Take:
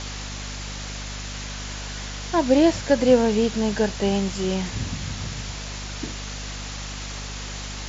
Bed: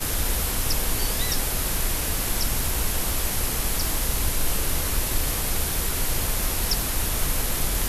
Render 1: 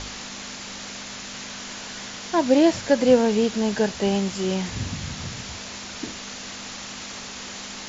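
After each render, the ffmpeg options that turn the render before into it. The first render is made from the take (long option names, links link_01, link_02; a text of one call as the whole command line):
ffmpeg -i in.wav -af "bandreject=frequency=50:width_type=h:width=4,bandreject=frequency=100:width_type=h:width=4,bandreject=frequency=150:width_type=h:width=4" out.wav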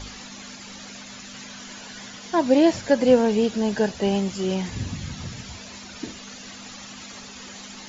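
ffmpeg -i in.wav -af "afftdn=noise_reduction=11:noise_floor=-37" out.wav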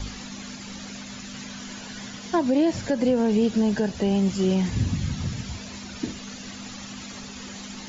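ffmpeg -i in.wav -filter_complex "[0:a]acrossover=split=300[link_01][link_02];[link_01]acontrast=68[link_03];[link_03][link_02]amix=inputs=2:normalize=0,alimiter=limit=-13.5dB:level=0:latency=1:release=142" out.wav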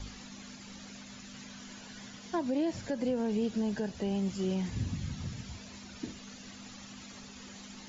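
ffmpeg -i in.wav -af "volume=-10dB" out.wav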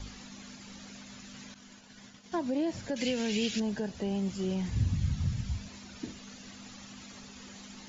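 ffmpeg -i in.wav -filter_complex "[0:a]asettb=1/sr,asplit=3[link_01][link_02][link_03];[link_01]atrim=end=1.544[link_04];[link_02]atrim=start=1.54:end=2.32,asetpts=PTS-STARTPTS,afade=type=in:duration=0.004:curve=qsin,afade=type=out:start_time=0.776:duration=0.004:curve=qsin,agate=range=-33dB:threshold=-43dB:ratio=3:release=100:detection=peak[link_05];[link_03]atrim=start=2.316[link_06];[link_04][link_05]acrossfade=duration=0.004:curve1=hsin:curve2=qsin[link_07];[link_07][link_06]acrossfade=duration=0.004:curve1=qsin:curve2=hsin,asettb=1/sr,asplit=3[link_08][link_09][link_10];[link_08]atrim=end=2.964[link_11];[link_09]atrim=start=2.96:end=3.6,asetpts=PTS-STARTPTS,afade=type=in:duration=0.004:curve=qsin,afade=type=out:start_time=0.636:duration=0.004:curve=qsin,highshelf=frequency=1600:width_type=q:width=1.5:gain=13[link_12];[link_10]atrim=start=3.596[link_13];[link_11][link_12]acrossfade=duration=0.004:curve1=hsin:curve2=qsin[link_14];[link_14][link_13]acrossfade=duration=0.004:curve1=qsin:curve2=hsin,asettb=1/sr,asplit=3[link_15][link_16][link_17];[link_15]atrim=end=4.294[link_18];[link_16]atrim=start=4.29:end=5.68,asetpts=PTS-STARTPTS,afade=type=in:duration=0.004:curve=qsin,afade=type=out:start_time=1.386:duration=0.004:curve=qsin,asubboost=boost=11.5:cutoff=150[link_19];[link_17]atrim=start=5.676[link_20];[link_18][link_19]acrossfade=duration=0.004:curve1=hsin:curve2=qsin[link_21];[link_21][link_20]acrossfade=duration=0.004:curve1=qsin:curve2=hsin" out.wav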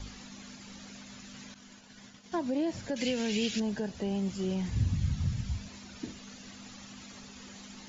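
ffmpeg -i in.wav -af anull out.wav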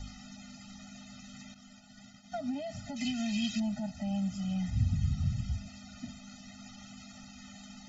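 ffmpeg -i in.wav -af "afftfilt=real='re*eq(mod(floor(b*sr/1024/300),2),0)':imag='im*eq(mod(floor(b*sr/1024/300),2),0)':win_size=1024:overlap=0.75" out.wav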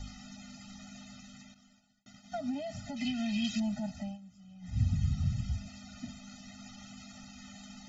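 ffmpeg -i in.wav -filter_complex "[0:a]asplit=3[link_01][link_02][link_03];[link_01]afade=type=out:start_time=2.95:duration=0.02[link_04];[link_02]lowpass=4700,afade=type=in:start_time=2.95:duration=0.02,afade=type=out:start_time=3.43:duration=0.02[link_05];[link_03]afade=type=in:start_time=3.43:duration=0.02[link_06];[link_04][link_05][link_06]amix=inputs=3:normalize=0,asplit=4[link_07][link_08][link_09][link_10];[link_07]atrim=end=2.06,asetpts=PTS-STARTPTS,afade=type=out:start_time=1.05:duration=1.01[link_11];[link_08]atrim=start=2.06:end=4.18,asetpts=PTS-STARTPTS,afade=type=in:duration=0.004:curve=hsin,afade=type=out:start_time=1.92:duration=0.2:silence=0.105925[link_12];[link_09]atrim=start=4.18:end=4.61,asetpts=PTS-STARTPTS,volume=-19.5dB[link_13];[link_10]atrim=start=4.61,asetpts=PTS-STARTPTS,afade=type=in:duration=0.2:silence=0.105925[link_14];[link_11][link_12][link_13][link_14]concat=n=4:v=0:a=1" out.wav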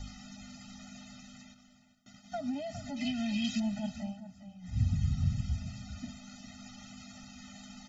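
ffmpeg -i in.wav -filter_complex "[0:a]asplit=2[link_01][link_02];[link_02]adelay=408.2,volume=-12dB,highshelf=frequency=4000:gain=-9.18[link_03];[link_01][link_03]amix=inputs=2:normalize=0" out.wav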